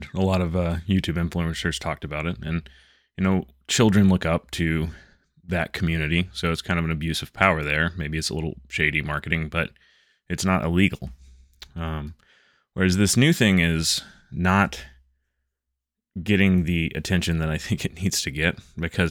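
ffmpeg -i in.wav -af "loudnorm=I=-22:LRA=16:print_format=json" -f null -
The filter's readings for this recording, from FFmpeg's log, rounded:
"input_i" : "-23.3",
"input_tp" : "-1.6",
"input_lra" : "3.6",
"input_thresh" : "-33.9",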